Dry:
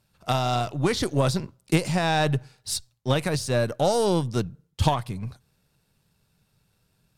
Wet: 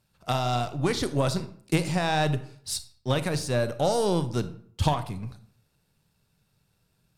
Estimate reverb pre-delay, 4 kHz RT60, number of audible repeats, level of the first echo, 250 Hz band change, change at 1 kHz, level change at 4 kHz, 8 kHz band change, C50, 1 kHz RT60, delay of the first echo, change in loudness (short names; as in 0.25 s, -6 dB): 30 ms, 0.40 s, none, none, -2.0 dB, -2.0 dB, -2.5 dB, -2.5 dB, 14.5 dB, 0.55 s, none, -2.0 dB